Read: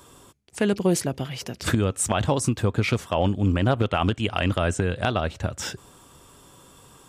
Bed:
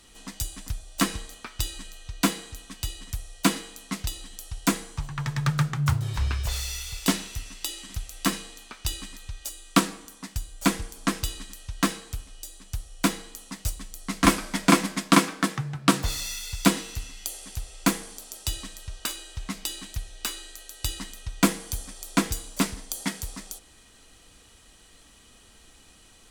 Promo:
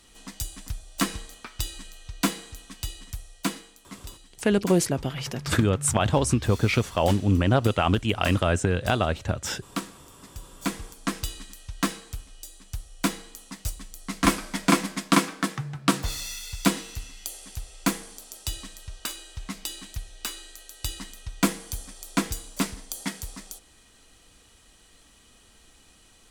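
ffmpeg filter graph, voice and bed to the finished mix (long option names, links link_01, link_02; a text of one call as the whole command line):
ffmpeg -i stem1.wav -i stem2.wav -filter_complex "[0:a]adelay=3850,volume=0.5dB[link_01];[1:a]volume=7.5dB,afade=type=out:start_time=2.88:duration=0.94:silence=0.334965,afade=type=in:start_time=10.29:duration=0.95:silence=0.354813[link_02];[link_01][link_02]amix=inputs=2:normalize=0" out.wav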